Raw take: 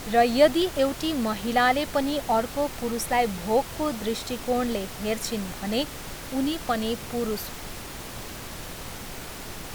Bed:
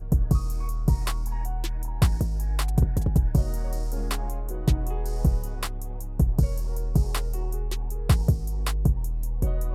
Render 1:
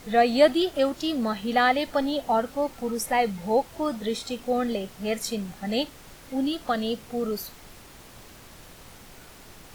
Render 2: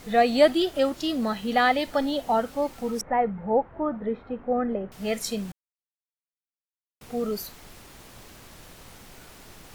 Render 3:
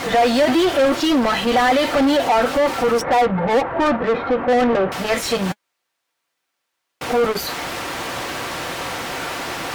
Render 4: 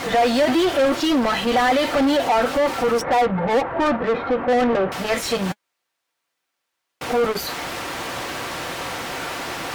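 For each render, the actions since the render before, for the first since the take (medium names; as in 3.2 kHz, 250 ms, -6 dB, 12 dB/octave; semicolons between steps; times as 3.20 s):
noise print and reduce 10 dB
3.01–4.92 s: low-pass 1.7 kHz 24 dB/octave; 5.52–7.01 s: mute
overdrive pedal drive 37 dB, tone 1.9 kHz, clips at -7.5 dBFS; comb of notches 210 Hz
trim -2 dB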